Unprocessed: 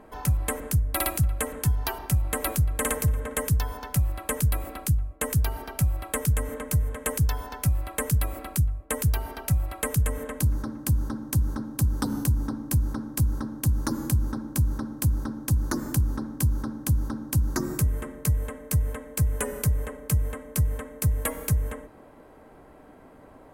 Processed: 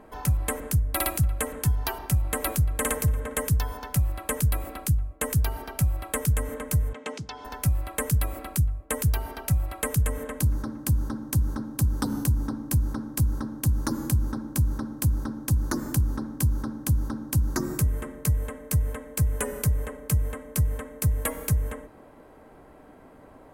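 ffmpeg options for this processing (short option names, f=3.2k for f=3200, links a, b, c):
-filter_complex "[0:a]asettb=1/sr,asplit=3[a][b][c];[a]atrim=end=6.934[d];[b]atrim=start=6.93:end=7.45,asetpts=PTS-STARTPTS,afade=t=in:d=0.004:c=qsin,afade=t=out:st=0.516:d=0.004:c=qsin,highpass=260,equalizer=f=520:t=q:w=4:g=-8,equalizer=f=1.1k:t=q:w=4:g=-5,equalizer=f=1.7k:t=q:w=4:g=-8,lowpass=f=5.6k:w=0.5412,lowpass=f=5.6k:w=1.3066[e];[c]atrim=start=7.446[f];[d][e]acrossfade=d=0.004:c1=hsin:c2=qsin[g];[g][f]acrossfade=d=0.004:c1=qsin:c2=hsin"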